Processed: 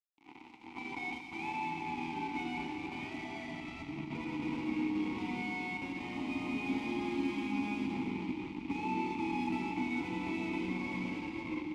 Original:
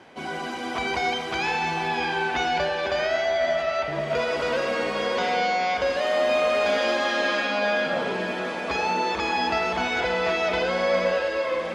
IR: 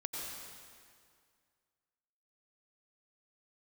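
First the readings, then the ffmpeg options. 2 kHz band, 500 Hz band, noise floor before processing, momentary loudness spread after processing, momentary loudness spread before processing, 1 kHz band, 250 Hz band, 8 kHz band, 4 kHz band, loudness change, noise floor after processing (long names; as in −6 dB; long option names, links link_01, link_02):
−15.5 dB, −22.5 dB, −31 dBFS, 7 LU, 5 LU, −15.0 dB, −0.5 dB, below −15 dB, −19.0 dB, −13.0 dB, −52 dBFS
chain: -filter_complex "[0:a]highpass=frequency=82:width=0.5412,highpass=frequency=82:width=1.3066,acrusher=bits=3:mix=0:aa=0.5,asplit=3[link_01][link_02][link_03];[link_01]bandpass=frequency=300:width_type=q:width=8,volume=0dB[link_04];[link_02]bandpass=frequency=870:width_type=q:width=8,volume=-6dB[link_05];[link_03]bandpass=frequency=2240:width_type=q:width=8,volume=-9dB[link_06];[link_04][link_05][link_06]amix=inputs=3:normalize=0,asplit=2[link_07][link_08];[1:a]atrim=start_sample=2205,highshelf=frequency=5600:gain=8.5[link_09];[link_08][link_09]afir=irnorm=-1:irlink=0,volume=-1.5dB[link_10];[link_07][link_10]amix=inputs=2:normalize=0,asubboost=boost=11:cutoff=180,volume=-5.5dB"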